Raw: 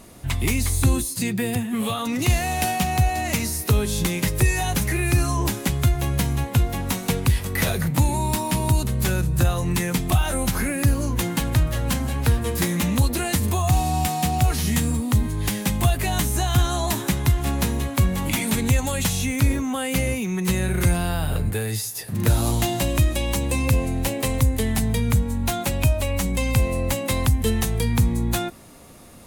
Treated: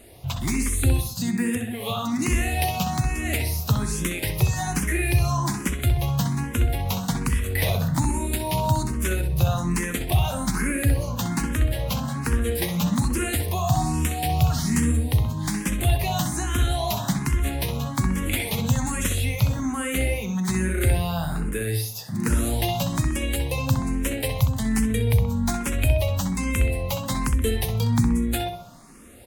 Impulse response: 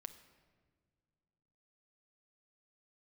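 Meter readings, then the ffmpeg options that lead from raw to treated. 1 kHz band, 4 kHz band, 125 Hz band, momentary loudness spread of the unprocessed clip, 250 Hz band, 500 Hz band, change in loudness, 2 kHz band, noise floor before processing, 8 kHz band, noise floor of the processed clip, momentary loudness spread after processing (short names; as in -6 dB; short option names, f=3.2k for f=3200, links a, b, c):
-2.0 dB, -2.5 dB, -1.5 dB, 4 LU, -1.0 dB, -2.0 dB, -2.0 dB, -2.0 dB, -32 dBFS, -3.0 dB, -33 dBFS, 4 LU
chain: -filter_complex "[0:a]asplit=2[a][b];[b]adelay=64,lowpass=f=3.3k:p=1,volume=-5.5dB,asplit=2[c][d];[d]adelay=64,lowpass=f=3.3k:p=1,volume=0.47,asplit=2[e][f];[f]adelay=64,lowpass=f=3.3k:p=1,volume=0.47,asplit=2[g][h];[h]adelay=64,lowpass=f=3.3k:p=1,volume=0.47,asplit=2[i][j];[j]adelay=64,lowpass=f=3.3k:p=1,volume=0.47,asplit=2[k][l];[l]adelay=64,lowpass=f=3.3k:p=1,volume=0.47[m];[a][c][e][g][i][k][m]amix=inputs=7:normalize=0,asplit=2[n][o];[o]afreqshift=1.2[p];[n][p]amix=inputs=2:normalize=1"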